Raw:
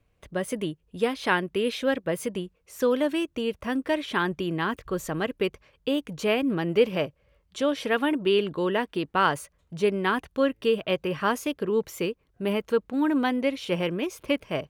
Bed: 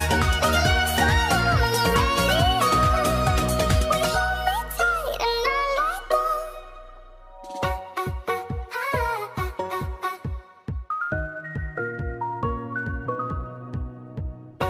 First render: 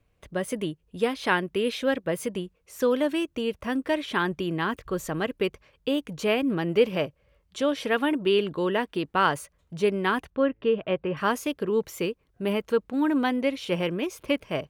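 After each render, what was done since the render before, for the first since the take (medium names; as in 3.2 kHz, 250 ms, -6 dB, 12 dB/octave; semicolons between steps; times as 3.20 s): 10.30–11.17 s: Gaussian low-pass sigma 2.9 samples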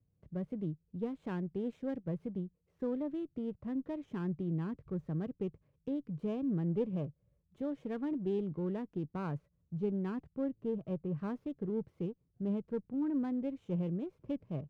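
band-pass filter 140 Hz, Q 1.7; sliding maximum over 5 samples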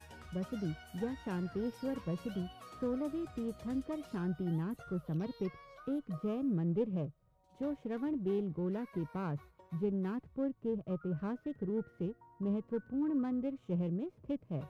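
add bed -32 dB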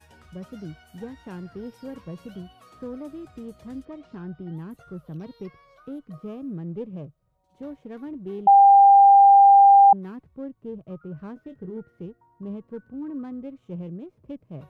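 3.85–4.57 s: distance through air 140 m; 8.47–9.93 s: bleep 796 Hz -9 dBFS; 11.34–11.77 s: doubling 22 ms -8.5 dB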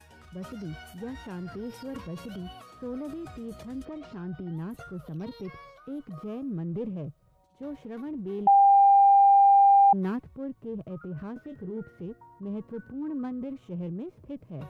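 transient shaper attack -3 dB, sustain +8 dB; compression, threshold -16 dBFS, peak gain reduction 5 dB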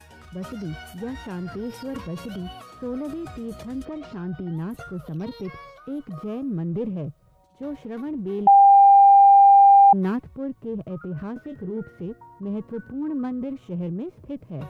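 trim +5.5 dB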